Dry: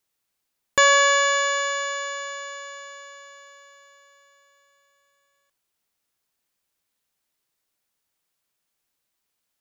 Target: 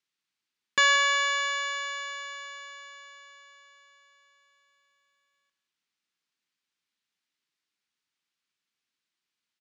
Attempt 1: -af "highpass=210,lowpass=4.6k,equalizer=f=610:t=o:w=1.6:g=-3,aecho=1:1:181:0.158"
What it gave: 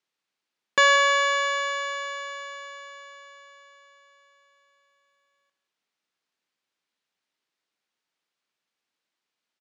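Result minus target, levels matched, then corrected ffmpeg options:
500 Hz band +8.0 dB
-af "highpass=210,lowpass=4.6k,equalizer=f=610:t=o:w=1.6:g=-14.5,aecho=1:1:181:0.158"

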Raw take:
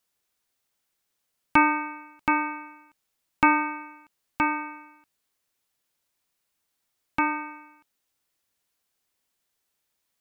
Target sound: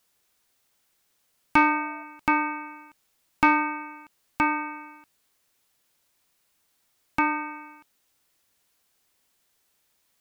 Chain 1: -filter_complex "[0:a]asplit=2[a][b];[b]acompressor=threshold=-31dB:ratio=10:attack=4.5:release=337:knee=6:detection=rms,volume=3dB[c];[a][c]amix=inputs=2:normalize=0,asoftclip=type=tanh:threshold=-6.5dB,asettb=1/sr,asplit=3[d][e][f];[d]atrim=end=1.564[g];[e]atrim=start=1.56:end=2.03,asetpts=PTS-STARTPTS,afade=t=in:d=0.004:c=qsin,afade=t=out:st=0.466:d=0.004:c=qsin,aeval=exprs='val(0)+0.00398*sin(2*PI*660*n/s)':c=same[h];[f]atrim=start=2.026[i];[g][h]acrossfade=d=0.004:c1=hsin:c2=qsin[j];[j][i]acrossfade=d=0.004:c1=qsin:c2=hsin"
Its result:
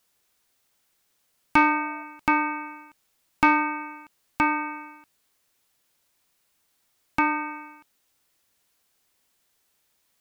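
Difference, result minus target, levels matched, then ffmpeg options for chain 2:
compressor: peak gain reduction -6 dB
-filter_complex "[0:a]asplit=2[a][b];[b]acompressor=threshold=-37.5dB:ratio=10:attack=4.5:release=337:knee=6:detection=rms,volume=3dB[c];[a][c]amix=inputs=2:normalize=0,asoftclip=type=tanh:threshold=-6.5dB,asettb=1/sr,asplit=3[d][e][f];[d]atrim=end=1.564[g];[e]atrim=start=1.56:end=2.03,asetpts=PTS-STARTPTS,afade=t=in:d=0.004:c=qsin,afade=t=out:st=0.466:d=0.004:c=qsin,aeval=exprs='val(0)+0.00398*sin(2*PI*660*n/s)':c=same[h];[f]atrim=start=2.026[i];[g][h]acrossfade=d=0.004:c1=hsin:c2=qsin[j];[j][i]acrossfade=d=0.004:c1=qsin:c2=hsin"

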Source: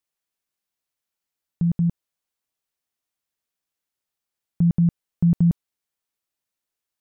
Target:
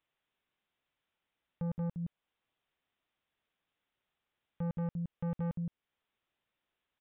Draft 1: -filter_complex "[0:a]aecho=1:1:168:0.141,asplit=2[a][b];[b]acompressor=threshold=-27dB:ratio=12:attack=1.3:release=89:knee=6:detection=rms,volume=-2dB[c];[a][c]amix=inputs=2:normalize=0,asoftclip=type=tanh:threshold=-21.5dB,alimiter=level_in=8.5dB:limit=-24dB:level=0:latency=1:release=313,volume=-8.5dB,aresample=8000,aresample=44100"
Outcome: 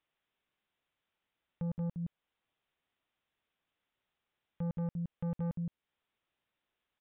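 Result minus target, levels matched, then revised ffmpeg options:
compressor: peak gain reduction +10.5 dB
-filter_complex "[0:a]aecho=1:1:168:0.141,asplit=2[a][b];[b]acompressor=threshold=-15dB:ratio=12:attack=1.3:release=89:knee=6:detection=rms,volume=-2dB[c];[a][c]amix=inputs=2:normalize=0,asoftclip=type=tanh:threshold=-21.5dB,alimiter=level_in=8.5dB:limit=-24dB:level=0:latency=1:release=313,volume=-8.5dB,aresample=8000,aresample=44100"

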